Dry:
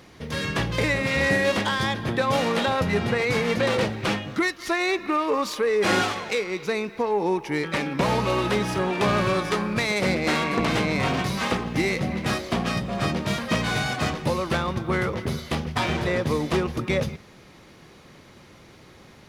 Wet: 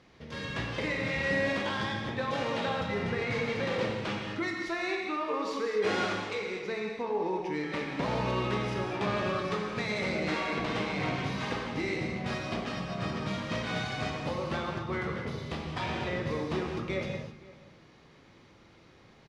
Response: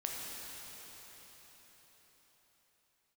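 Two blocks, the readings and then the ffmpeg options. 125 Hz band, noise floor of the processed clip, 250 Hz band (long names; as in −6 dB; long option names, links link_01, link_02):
−8.0 dB, −57 dBFS, −8.0 dB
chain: -filter_complex "[0:a]lowpass=5500,asplit=2[link_01][link_02];[link_02]adelay=519,volume=-20dB,highshelf=frequency=4000:gain=-11.7[link_03];[link_01][link_03]amix=inputs=2:normalize=0[link_04];[1:a]atrim=start_sample=2205,afade=type=out:start_time=0.31:duration=0.01,atrim=end_sample=14112[link_05];[link_04][link_05]afir=irnorm=-1:irlink=0,volume=-8.5dB"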